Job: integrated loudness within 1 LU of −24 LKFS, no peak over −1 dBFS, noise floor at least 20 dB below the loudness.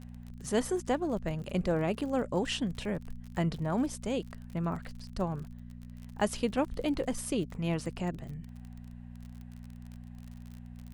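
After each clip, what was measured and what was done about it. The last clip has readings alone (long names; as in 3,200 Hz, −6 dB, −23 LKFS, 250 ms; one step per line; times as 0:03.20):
crackle rate 40 per second; mains hum 60 Hz; hum harmonics up to 240 Hz; level of the hum −43 dBFS; integrated loudness −33.5 LKFS; sample peak −14.5 dBFS; target loudness −24.0 LKFS
→ click removal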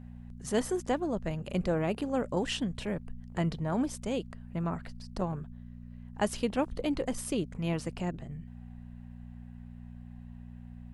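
crackle rate 0.091 per second; mains hum 60 Hz; hum harmonics up to 240 Hz; level of the hum −43 dBFS
→ hum removal 60 Hz, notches 4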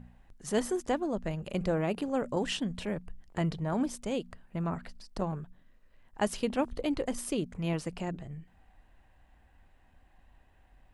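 mains hum none found; integrated loudness −33.5 LKFS; sample peak −15.0 dBFS; target loudness −24.0 LKFS
→ level +9.5 dB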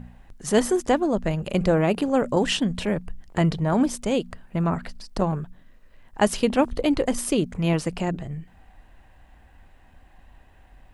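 integrated loudness −24.0 LKFS; sample peak −5.5 dBFS; background noise floor −54 dBFS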